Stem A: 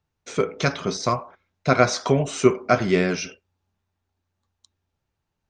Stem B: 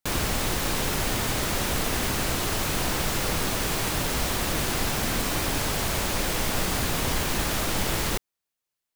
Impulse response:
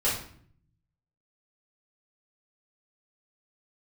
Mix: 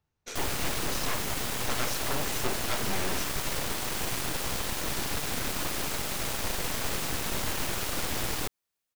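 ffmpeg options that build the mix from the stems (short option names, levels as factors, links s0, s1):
-filter_complex "[0:a]volume=0.75[s0];[1:a]adelay=300,volume=1.06[s1];[s0][s1]amix=inputs=2:normalize=0,aeval=exprs='0.631*(cos(1*acos(clip(val(0)/0.631,-1,1)))-cos(1*PI/2))+0.316*(cos(8*acos(clip(val(0)/0.631,-1,1)))-cos(8*PI/2))':c=same,asoftclip=type=tanh:threshold=0.188,alimiter=limit=0.075:level=0:latency=1:release=65"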